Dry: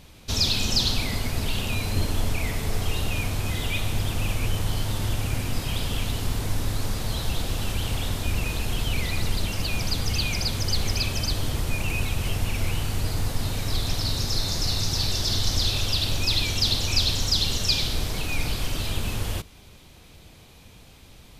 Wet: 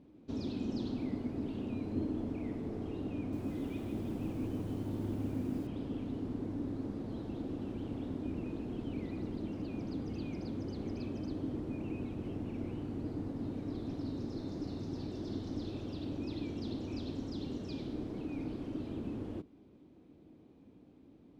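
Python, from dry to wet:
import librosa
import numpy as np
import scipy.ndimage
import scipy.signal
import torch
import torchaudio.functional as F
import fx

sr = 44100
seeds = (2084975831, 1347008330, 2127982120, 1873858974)

y = fx.bandpass_q(x, sr, hz=290.0, q=3.6)
y = fx.echo_crushed(y, sr, ms=157, feedback_pct=55, bits=10, wet_db=-7.0, at=(3.17, 5.67))
y = y * librosa.db_to_amplitude(3.5)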